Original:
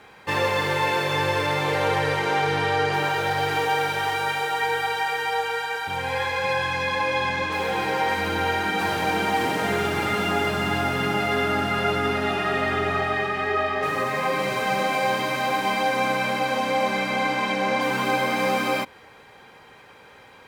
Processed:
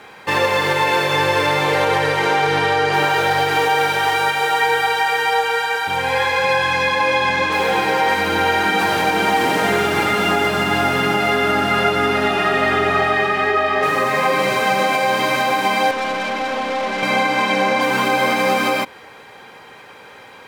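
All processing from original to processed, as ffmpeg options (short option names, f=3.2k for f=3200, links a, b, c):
-filter_complex "[0:a]asettb=1/sr,asplit=3[a][b][c];[a]atrim=end=15.914[d];[b]atrim=start=15.91:end=17.03,asetpts=PTS-STARTPTS,afade=t=in:d=0.004:c=qsin,afade=t=out:st=1.116:d=0.004:c=qsin,highpass=f=180:w=0.5412,highpass=f=180:w=1.3066,aemphasis=mode=reproduction:type=50kf,aeval=exprs='(tanh(20*val(0)+0.4)-tanh(0.4))/20':c=same[e];[c]atrim=start=17.026[f];[d][e]acrossfade=d=0.004:c1=hsin:c2=qsin[g];[g][f]acrossfade=d=0.004:c1=qsin:c2=hsin,lowshelf=f=97:g=-11.5,alimiter=limit=-15dB:level=0:latency=1:release=142,volume=8dB"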